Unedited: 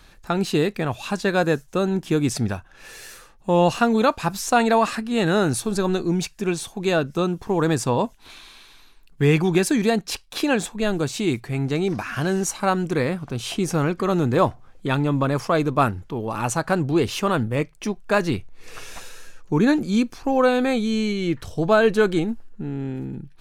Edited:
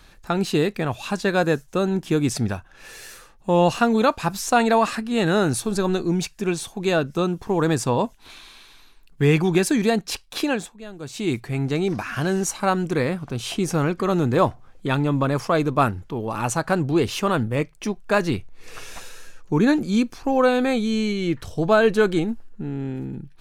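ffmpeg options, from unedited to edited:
-filter_complex "[0:a]asplit=3[a][b][c];[a]atrim=end=10.77,asetpts=PTS-STARTPTS,afade=t=out:st=10.4:d=0.37:silence=0.16788[d];[b]atrim=start=10.77:end=10.98,asetpts=PTS-STARTPTS,volume=-15.5dB[e];[c]atrim=start=10.98,asetpts=PTS-STARTPTS,afade=t=in:d=0.37:silence=0.16788[f];[d][e][f]concat=n=3:v=0:a=1"

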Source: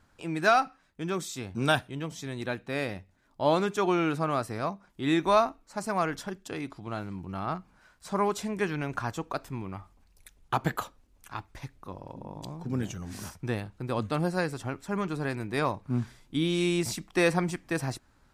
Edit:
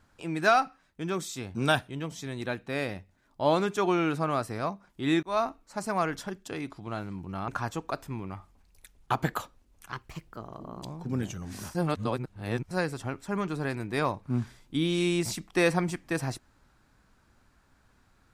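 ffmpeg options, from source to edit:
-filter_complex "[0:a]asplit=7[a][b][c][d][e][f][g];[a]atrim=end=5.23,asetpts=PTS-STARTPTS,afade=t=out:st=5.226:d=0.004:c=hsin[h];[b]atrim=start=5.23:end=7.482,asetpts=PTS-STARTPTS,afade=t=in:d=0.26[i];[c]atrim=start=8.898:end=11.344[j];[d]atrim=start=11.34:end=12.43,asetpts=PTS-STARTPTS,asetrate=52920,aresample=44100[k];[e]atrim=start=12.426:end=13.352[l];[f]atrim=start=13.348:end=14.312,asetpts=PTS-STARTPTS,areverse[m];[g]atrim=start=14.308[n];[h][i]concat=n=2:v=0:a=1[o];[o][j]acrossfade=d=0.004:c1=hsin:c2=hsin[p];[p][k]acrossfade=d=0.004:c1=hsin:c2=hsin[q];[q][l]acrossfade=d=0.004:c1=hsin:c2=hsin[r];[r][m]acrossfade=d=0.004:c1=hsin:c2=hsin[s];[s][n]acrossfade=d=0.004:c1=hsin:c2=hsin"

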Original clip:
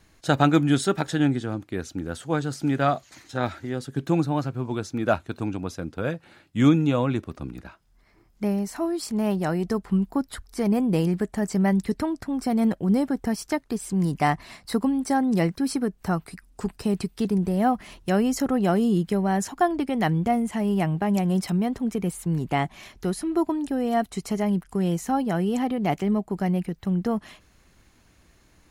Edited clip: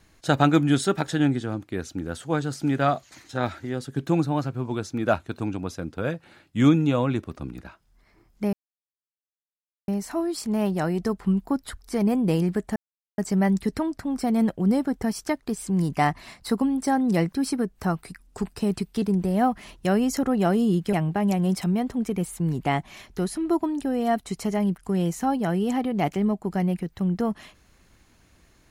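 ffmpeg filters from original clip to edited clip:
-filter_complex "[0:a]asplit=4[a][b][c][d];[a]atrim=end=8.53,asetpts=PTS-STARTPTS,afade=t=out:st=8.526:d=0.004:c=hsin,apad=pad_dur=1.35[e];[b]atrim=start=8.53:end=11.41,asetpts=PTS-STARTPTS,afade=t=in:d=0.004:c=hsin,afade=t=out:st=2.876:d=0.004:c=hsin,apad=pad_dur=0.42[f];[c]atrim=start=11.41:end=19.162,asetpts=PTS-STARTPTS,afade=t=in:d=0.004:c=hsin[g];[d]atrim=start=20.788[h];[e][f][g]concat=n=3:v=0:a=1[i];[i][h]acrossfade=d=0.004:c1=hsin:c2=hsin"

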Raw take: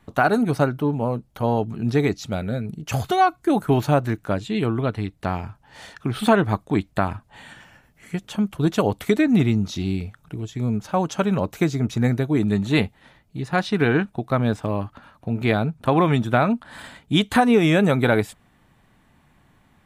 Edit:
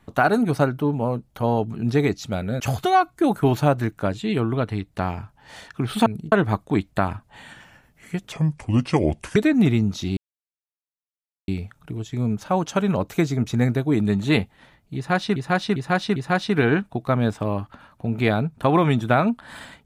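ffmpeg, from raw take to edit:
-filter_complex "[0:a]asplit=10[a][b][c][d][e][f][g][h][i][j];[a]atrim=end=2.602[k];[b]atrim=start=2.858:end=6.322[l];[c]atrim=start=2.598:end=2.862[m];[d]atrim=start=6.318:end=8.324[n];[e]atrim=start=8.32:end=9.1,asetpts=PTS-STARTPTS,asetrate=33075,aresample=44100[o];[f]atrim=start=9.096:end=9.91,asetpts=PTS-STARTPTS,afade=t=out:st=0.81:d=0.004:c=hsin,apad=pad_dur=1.31[p];[g]atrim=start=9.91:end=13.792,asetpts=PTS-STARTPTS,afade=t=in:d=0.004:c=hsin[q];[h]atrim=start=13.388:end=13.792[r];[i]atrim=start=13.388:end=13.792[s];[j]atrim=start=13.388[t];[k][l]acrossfade=d=0.004:c1=hsin:c2=hsin[u];[u][m]acrossfade=d=0.004:c1=hsin:c2=hsin[v];[v][n]acrossfade=d=0.004:c1=hsin:c2=hsin[w];[w][o]acrossfade=d=0.004:c1=hsin:c2=hsin[x];[p][q]concat=n=2:v=0:a=1[y];[x][y]acrossfade=d=0.004:c1=hsin:c2=hsin[z];[z][r]acrossfade=d=0.004:c1=hsin:c2=hsin[aa];[aa][s]acrossfade=d=0.004:c1=hsin:c2=hsin[ab];[ab][t]acrossfade=d=0.004:c1=hsin:c2=hsin"

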